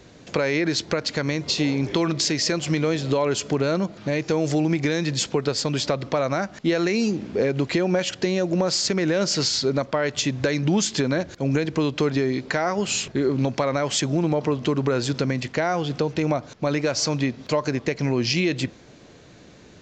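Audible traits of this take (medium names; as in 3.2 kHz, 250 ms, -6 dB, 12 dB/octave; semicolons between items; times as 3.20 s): noise floor -48 dBFS; spectral tilt -4.5 dB/octave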